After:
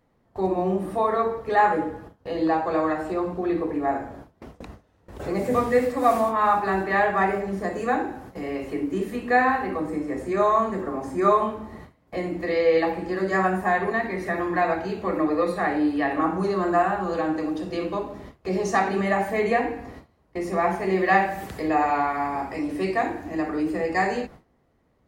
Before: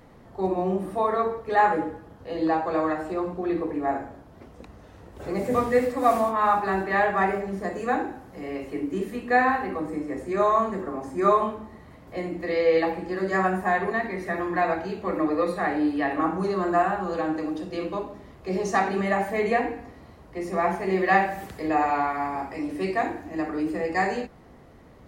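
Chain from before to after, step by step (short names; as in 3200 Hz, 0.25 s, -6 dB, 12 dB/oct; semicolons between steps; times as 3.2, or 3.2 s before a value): gate with hold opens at -35 dBFS; in parallel at -1 dB: compressor, threshold -37 dBFS, peak gain reduction 20.5 dB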